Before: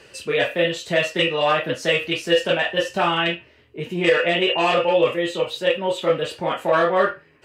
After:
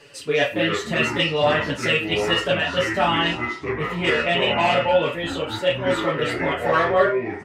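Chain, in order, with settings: comb 7 ms, depth 100%; echoes that change speed 0.147 s, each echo -6 st, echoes 3, each echo -6 dB; gain -3.5 dB

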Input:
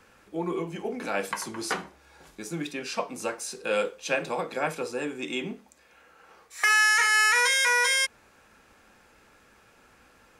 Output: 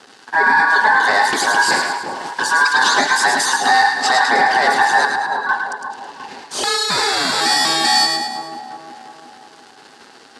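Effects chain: 6.89–7.4 ring modulator 640 Hz -> 180 Hz; in parallel at +1.5 dB: compressor 16:1, threshold -38 dBFS, peak gain reduction 20.5 dB; on the sum: sample leveller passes 5; 5.05–5.49 octave resonator E, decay 0.1 s; envelope flanger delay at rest 11.9 ms, full sweep at -12.5 dBFS; ring modulator 1300 Hz; speaker cabinet 180–9700 Hz, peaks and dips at 260 Hz +9 dB, 410 Hz +7 dB, 820 Hz +7 dB, 1600 Hz +6 dB, 2400 Hz -5 dB, 4600 Hz +7 dB; on a send: split-band echo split 1100 Hz, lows 0.353 s, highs 0.107 s, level -5 dB; 2.81–3.57 on the sum: three-band squash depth 100%

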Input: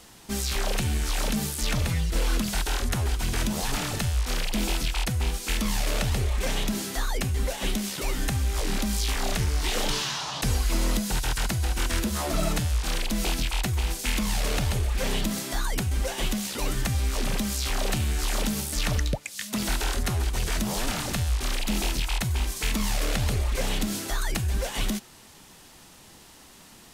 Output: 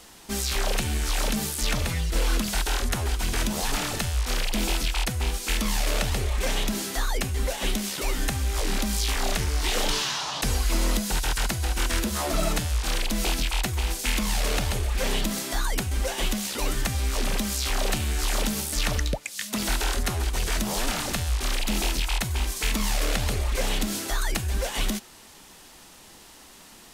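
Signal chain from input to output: bell 120 Hz -6.5 dB 1.5 oct; gain +2 dB

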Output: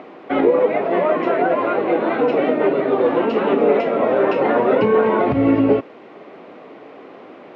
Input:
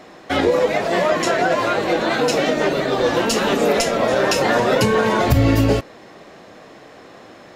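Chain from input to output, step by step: upward compressor, threshold -35 dBFS; added noise blue -34 dBFS; speaker cabinet 200–2300 Hz, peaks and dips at 270 Hz +4 dB, 410 Hz +5 dB, 1700 Hz -8 dB

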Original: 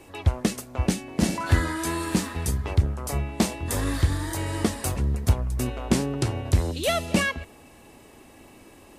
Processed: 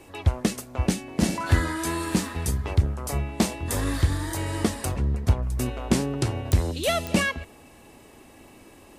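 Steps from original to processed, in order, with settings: 4.85–5.43 high shelf 6100 Hz -11.5 dB; pops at 6.52/7.07, -13 dBFS

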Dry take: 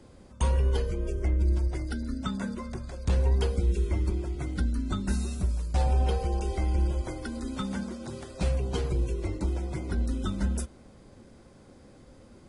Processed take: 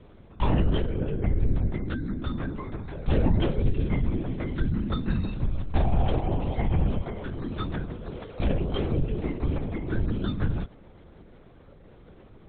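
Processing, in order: LPC vocoder at 8 kHz whisper; gain +2 dB

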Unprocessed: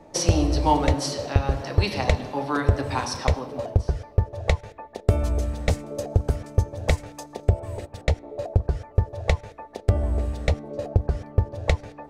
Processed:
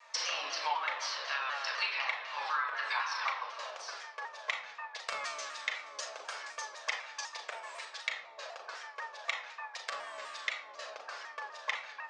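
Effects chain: HPF 1200 Hz 24 dB/oct; treble ducked by the level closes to 2700 Hz, closed at -32 dBFS; LPF 6800 Hz 24 dB/oct; compressor, threshold -36 dBFS, peak gain reduction 11.5 dB; reverb RT60 0.65 s, pre-delay 6 ms, DRR -0.5 dB; shaped vibrato saw down 4 Hz, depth 100 cents; gain +2 dB

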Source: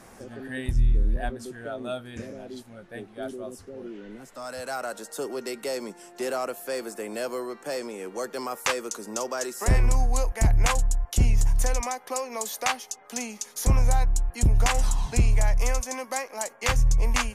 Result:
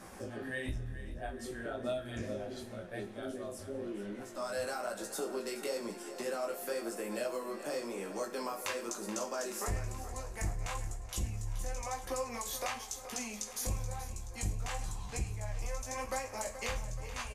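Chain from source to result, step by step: limiter -17 dBFS, peak gain reduction 4 dB; compressor 5:1, threshold -34 dBFS, peak gain reduction 13 dB; chorus 0.99 Hz, delay 15 ms, depth 6.6 ms; feedback echo 0.428 s, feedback 60%, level -13 dB; on a send at -5 dB: reverb, pre-delay 3 ms; on the sum: gain +1 dB

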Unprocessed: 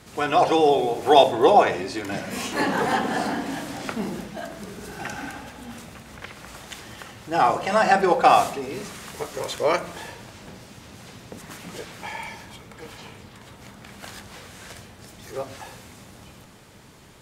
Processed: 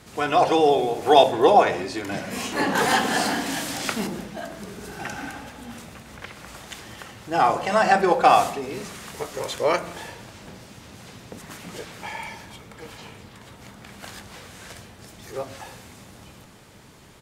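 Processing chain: 2.75–4.07 high shelf 2000 Hz +11 dB; speakerphone echo 0.17 s, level -22 dB

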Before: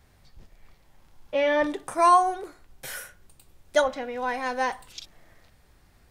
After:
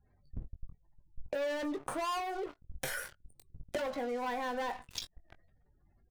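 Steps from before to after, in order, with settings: spectral gate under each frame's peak -20 dB strong; high shelf 2500 Hz -5 dB; sample leveller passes 5; compressor 10:1, threshold -36 dBFS, peak gain reduction 23.5 dB; doubler 21 ms -9.5 dB

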